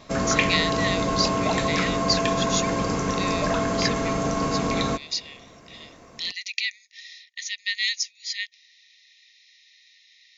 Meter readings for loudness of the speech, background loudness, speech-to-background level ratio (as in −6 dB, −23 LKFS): −28.5 LKFS, −24.5 LKFS, −4.0 dB